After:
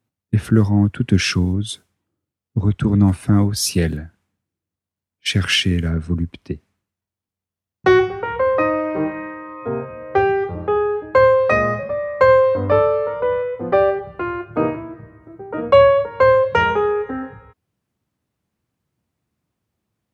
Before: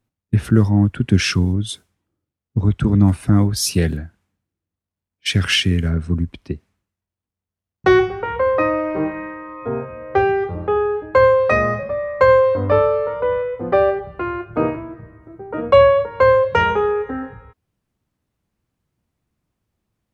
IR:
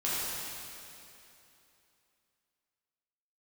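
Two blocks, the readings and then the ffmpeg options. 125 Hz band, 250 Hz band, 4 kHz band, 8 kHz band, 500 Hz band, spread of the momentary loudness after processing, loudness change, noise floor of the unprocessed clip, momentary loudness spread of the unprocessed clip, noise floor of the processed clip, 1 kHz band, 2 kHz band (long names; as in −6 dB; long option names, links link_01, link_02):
−1.0 dB, 0.0 dB, 0.0 dB, 0.0 dB, 0.0 dB, 14 LU, 0.0 dB, below −85 dBFS, 14 LU, below −85 dBFS, 0.0 dB, 0.0 dB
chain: -af "highpass=77"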